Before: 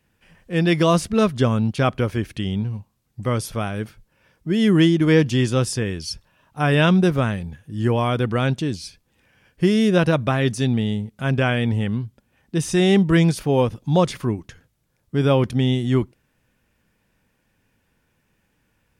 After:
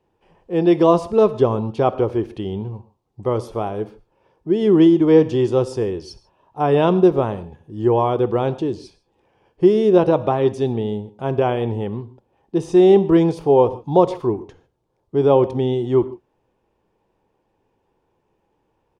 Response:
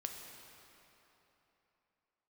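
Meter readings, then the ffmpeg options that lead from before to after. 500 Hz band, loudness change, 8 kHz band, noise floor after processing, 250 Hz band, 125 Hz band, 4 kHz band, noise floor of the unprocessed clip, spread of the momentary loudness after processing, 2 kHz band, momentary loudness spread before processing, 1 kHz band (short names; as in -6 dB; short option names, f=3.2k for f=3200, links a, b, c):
+6.5 dB, +2.5 dB, under -10 dB, -69 dBFS, +1.0 dB, -4.5 dB, -8.0 dB, -68 dBFS, 14 LU, -10.0 dB, 13 LU, +4.0 dB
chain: -filter_complex "[0:a]firequalizer=gain_entry='entry(250,0);entry(360,14);entry(590,7);entry(860,13);entry(1500,-6);entry(2100,-6);entry(3100,-3);entry(12000,-15)':delay=0.05:min_phase=1,asplit=2[a][b];[1:a]atrim=start_sample=2205,afade=t=out:st=0.27:d=0.01,atrim=end_sample=12348,asetrate=61740,aresample=44100[c];[b][c]afir=irnorm=-1:irlink=0,volume=-0.5dB[d];[a][d]amix=inputs=2:normalize=0,volume=-8dB"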